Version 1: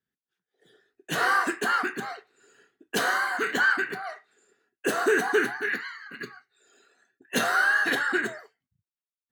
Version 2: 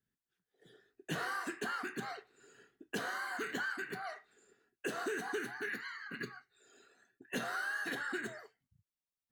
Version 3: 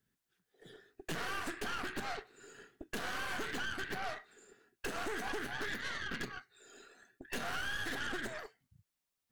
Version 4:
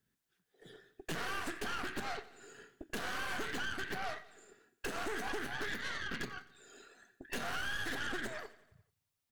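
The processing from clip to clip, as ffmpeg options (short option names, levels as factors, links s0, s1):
-filter_complex "[0:a]acrossover=split=2300|5800[s0][s1][s2];[s0]acompressor=threshold=0.0141:ratio=4[s3];[s1]acompressor=threshold=0.00501:ratio=4[s4];[s2]acompressor=threshold=0.00251:ratio=4[s5];[s3][s4][s5]amix=inputs=3:normalize=0,lowshelf=f=190:g=11,volume=0.668"
-af "acompressor=threshold=0.00891:ratio=12,aeval=exprs='0.0251*(cos(1*acos(clip(val(0)/0.0251,-1,1)))-cos(1*PI/2))+0.00447*(cos(5*acos(clip(val(0)/0.0251,-1,1)))-cos(5*PI/2))+0.00794*(cos(6*acos(clip(val(0)/0.0251,-1,1)))-cos(6*PI/2))':c=same,volume=1.12"
-af "aecho=1:1:87|174|261|348|435:0.119|0.0701|0.0414|0.0244|0.0144"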